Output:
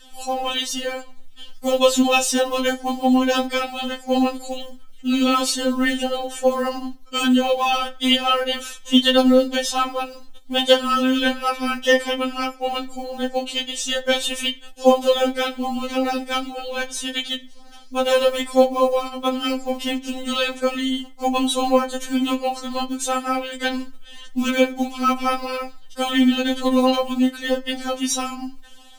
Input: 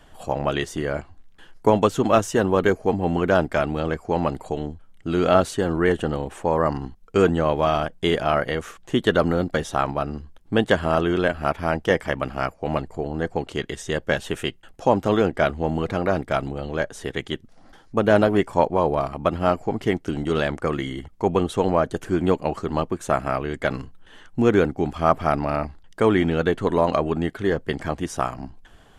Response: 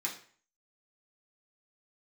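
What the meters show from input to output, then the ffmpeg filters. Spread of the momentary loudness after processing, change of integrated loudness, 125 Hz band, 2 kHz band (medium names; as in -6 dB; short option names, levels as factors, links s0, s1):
11 LU, +2.0 dB, under -20 dB, +2.5 dB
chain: -filter_complex "[0:a]highshelf=f=2400:t=q:w=1.5:g=9,acrusher=bits=7:mode=log:mix=0:aa=0.000001,asplit=2[s0][s1];[1:a]atrim=start_sample=2205,adelay=10[s2];[s1][s2]afir=irnorm=-1:irlink=0,volume=0.2[s3];[s0][s3]amix=inputs=2:normalize=0,afftfilt=real='re*3.46*eq(mod(b,12),0)':imag='im*3.46*eq(mod(b,12),0)':win_size=2048:overlap=0.75,volume=1.58"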